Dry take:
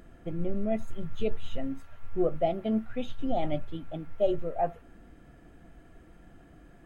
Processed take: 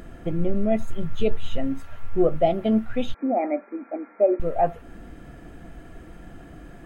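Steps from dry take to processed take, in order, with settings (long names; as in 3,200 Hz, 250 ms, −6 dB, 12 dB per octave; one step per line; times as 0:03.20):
in parallel at −3 dB: downward compressor, threshold −38 dBFS, peak gain reduction 17 dB
0:03.14–0:04.40: on the sum: linear-phase brick-wall band-pass 210–2,500 Hz
level +6 dB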